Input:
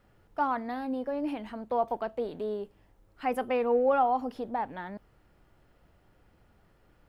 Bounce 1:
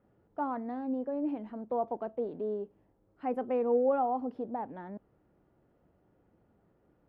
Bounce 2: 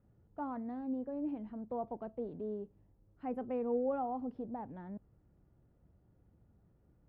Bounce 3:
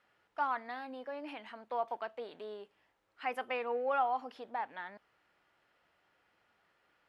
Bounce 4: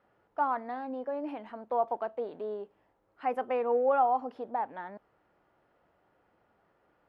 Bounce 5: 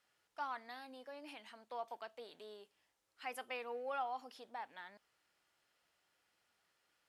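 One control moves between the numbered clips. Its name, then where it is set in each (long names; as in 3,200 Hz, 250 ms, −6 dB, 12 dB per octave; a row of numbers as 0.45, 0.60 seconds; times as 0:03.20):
resonant band-pass, frequency: 300, 120, 2,300, 830, 6,200 Hertz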